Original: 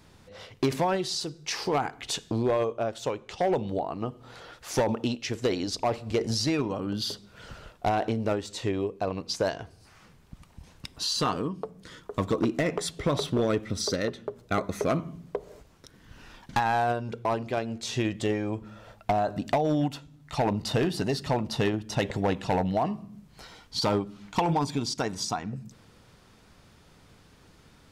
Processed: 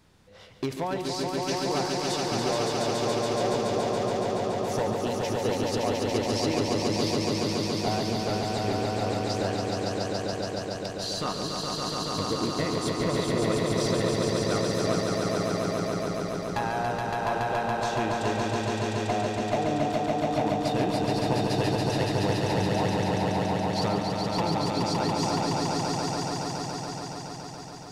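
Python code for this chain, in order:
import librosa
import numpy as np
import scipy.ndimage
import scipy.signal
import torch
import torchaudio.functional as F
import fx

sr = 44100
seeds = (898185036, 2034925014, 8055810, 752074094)

y = fx.echo_swell(x, sr, ms=141, loudest=5, wet_db=-3)
y = F.gain(torch.from_numpy(y), -5.0).numpy()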